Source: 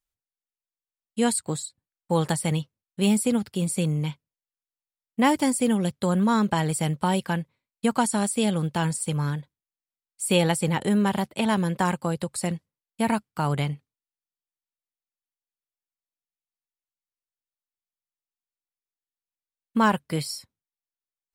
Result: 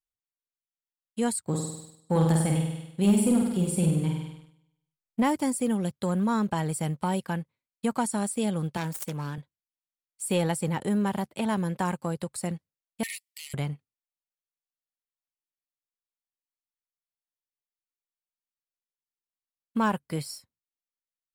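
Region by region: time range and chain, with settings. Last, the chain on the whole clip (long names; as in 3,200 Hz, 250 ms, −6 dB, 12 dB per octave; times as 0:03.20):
0:01.46–0:05.23: low-shelf EQ 280 Hz +6 dB + flutter between parallel walls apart 8.5 metres, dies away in 0.89 s
0:08.77–0:09.38: phase distortion by the signal itself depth 0.22 ms + high-pass filter 170 Hz
0:13.03–0:13.54: mid-hump overdrive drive 15 dB, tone 7,700 Hz, clips at −12.5 dBFS + linear-phase brick-wall high-pass 1,800 Hz + high-shelf EQ 6,800 Hz +8.5 dB
whole clip: dynamic equaliser 3,300 Hz, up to −5 dB, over −41 dBFS, Q 0.78; leveller curve on the samples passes 1; level −7.5 dB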